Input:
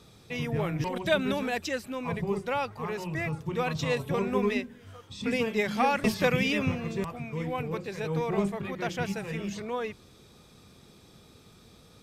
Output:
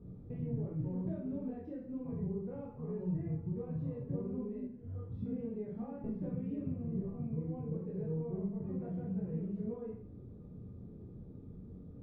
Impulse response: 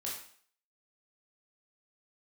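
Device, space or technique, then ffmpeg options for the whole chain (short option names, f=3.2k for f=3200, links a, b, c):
television next door: -filter_complex "[0:a]acompressor=threshold=-40dB:ratio=6,lowpass=250[a];[1:a]atrim=start_sample=2205[b];[a][b]afir=irnorm=-1:irlink=0,volume=10dB"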